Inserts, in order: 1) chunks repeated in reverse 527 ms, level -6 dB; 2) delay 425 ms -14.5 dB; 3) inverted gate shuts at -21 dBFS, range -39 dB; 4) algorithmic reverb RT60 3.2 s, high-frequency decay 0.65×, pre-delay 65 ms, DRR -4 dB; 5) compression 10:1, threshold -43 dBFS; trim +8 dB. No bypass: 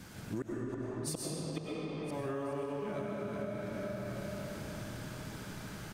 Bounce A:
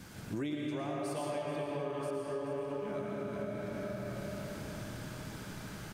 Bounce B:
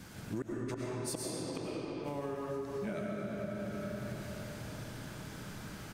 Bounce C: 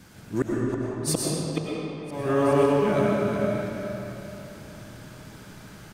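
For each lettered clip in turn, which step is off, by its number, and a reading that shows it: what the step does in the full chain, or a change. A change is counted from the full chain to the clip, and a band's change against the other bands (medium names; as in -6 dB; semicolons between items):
3, crest factor change -2.5 dB; 1, momentary loudness spread change +1 LU; 5, mean gain reduction 7.0 dB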